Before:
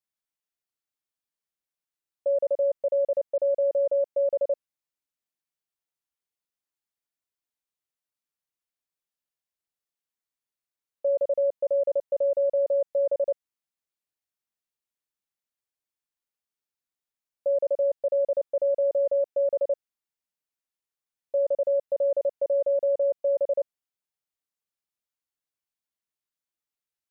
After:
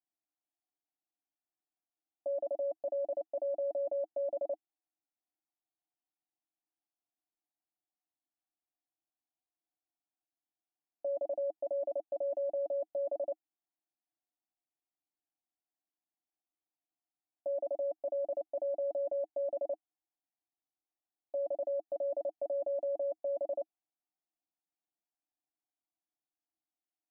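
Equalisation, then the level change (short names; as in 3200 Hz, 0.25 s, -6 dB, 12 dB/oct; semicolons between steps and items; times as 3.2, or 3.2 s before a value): double band-pass 480 Hz, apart 1.2 oct; air absorption 430 m; +8.0 dB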